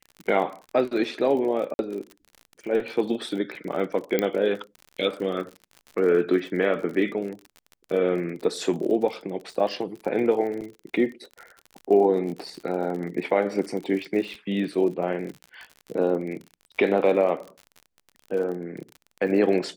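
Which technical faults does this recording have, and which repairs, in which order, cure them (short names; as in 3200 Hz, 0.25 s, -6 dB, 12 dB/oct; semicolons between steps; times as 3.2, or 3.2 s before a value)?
crackle 44/s -33 dBFS
1.74–1.79 gap 51 ms
4.19 pop -9 dBFS
10.61–10.62 gap 7.3 ms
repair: de-click; interpolate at 1.74, 51 ms; interpolate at 10.61, 7.3 ms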